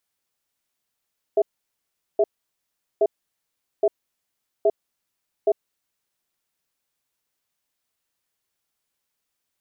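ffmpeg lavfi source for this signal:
-f lavfi -i "aevalsrc='0.141*(sin(2*PI*410*t)+sin(2*PI*655*t))*clip(min(mod(t,0.82),0.05-mod(t,0.82))/0.005,0,1)':d=4.51:s=44100"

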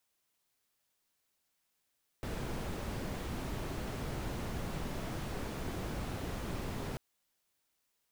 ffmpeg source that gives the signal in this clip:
-f lavfi -i "anoisesrc=c=brown:a=0.0589:d=4.74:r=44100:seed=1"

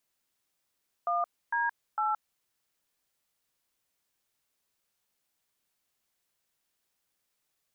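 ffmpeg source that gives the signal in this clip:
-f lavfi -i "aevalsrc='0.0376*clip(min(mod(t,0.454),0.171-mod(t,0.454))/0.002,0,1)*(eq(floor(t/0.454),0)*(sin(2*PI*697*mod(t,0.454))+sin(2*PI*1209*mod(t,0.454)))+eq(floor(t/0.454),1)*(sin(2*PI*941*mod(t,0.454))+sin(2*PI*1633*mod(t,0.454)))+eq(floor(t/0.454),2)*(sin(2*PI*852*mod(t,0.454))+sin(2*PI*1336*mod(t,0.454))))':d=1.362:s=44100"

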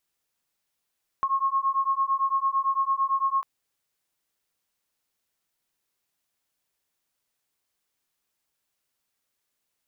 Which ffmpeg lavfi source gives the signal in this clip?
-f lavfi -i "aevalsrc='0.0562*(sin(2*PI*1080*t)+sin(2*PI*1088.9*t))':d=2.2:s=44100"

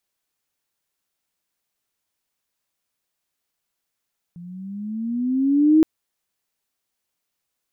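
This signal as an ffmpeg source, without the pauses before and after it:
-f lavfi -i "aevalsrc='pow(10,(-9.5+26*(t/1.47-1))/20)*sin(2*PI*170*1.47/(11*log(2)/12)*(exp(11*log(2)/12*t/1.47)-1))':d=1.47:s=44100"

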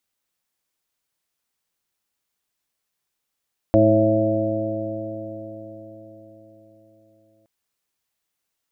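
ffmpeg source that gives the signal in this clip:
-f lavfi -i "aevalsrc='0.112*pow(10,-3*t/4.7)*sin(2*PI*107.09*t)+0.0794*pow(10,-3*t/4.7)*sin(2*PI*214.73*t)+0.168*pow(10,-3*t/4.7)*sin(2*PI*323.45*t)+0.02*pow(10,-3*t/4.7)*sin(2*PI*433.78*t)+0.158*pow(10,-3*t/4.7)*sin(2*PI*546.25*t)+0.141*pow(10,-3*t/4.7)*sin(2*PI*661.35*t)':d=3.72:s=44100"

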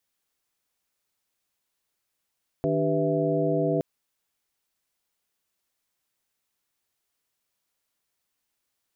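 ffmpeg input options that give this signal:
-f lavfi -i "aevalsrc='0.0398*(sin(2*PI*155.56*t)+sin(2*PI*293.66*t)+sin(2*PI*392*t)+sin(2*PI*493.88*t)+sin(2*PI*659.26*t))':d=1.17:s=44100"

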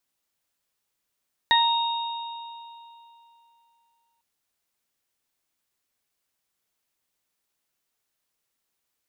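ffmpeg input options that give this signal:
-f lavfi -i "aevalsrc='0.126*pow(10,-3*t/2.99)*sin(2*PI*931*t)+0.141*pow(10,-3*t/0.27)*sin(2*PI*1862*t)+0.0158*pow(10,-3*t/3.13)*sin(2*PI*2793*t)+0.112*pow(10,-3*t/2.21)*sin(2*PI*3724*t)':d=2.7:s=44100"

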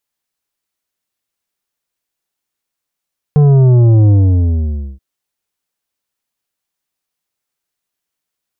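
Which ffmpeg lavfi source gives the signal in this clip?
-f lavfi -i "aevalsrc='0.501*clip((1.63-t)/0.9,0,1)*tanh(2.82*sin(2*PI*150*1.63/log(65/150)*(exp(log(65/150)*t/1.63)-1)))/tanh(2.82)':d=1.63:s=44100"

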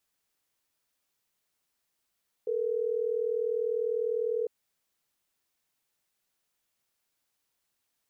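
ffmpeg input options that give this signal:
-f lavfi -i "aevalsrc='0.0335*(sin(2*PI*440*t)+sin(2*PI*480*t))*clip(min(mod(t,6),2-mod(t,6))/0.005,0,1)':d=3.12:s=44100"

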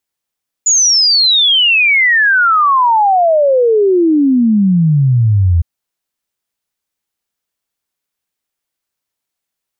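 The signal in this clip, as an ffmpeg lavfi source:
-f lavfi -i "aevalsrc='0.447*clip(min(t,4.96-t)/0.01,0,1)*sin(2*PI*7000*4.96/log(81/7000)*(exp(log(81/7000)*t/4.96)-1))':d=4.96:s=44100"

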